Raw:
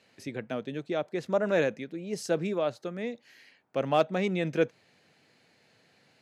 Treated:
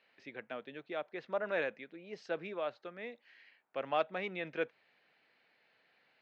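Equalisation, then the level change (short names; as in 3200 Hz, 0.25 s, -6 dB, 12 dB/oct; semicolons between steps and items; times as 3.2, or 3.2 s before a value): HPF 1400 Hz 6 dB/oct; LPF 3400 Hz 12 dB/oct; air absorption 170 m; 0.0 dB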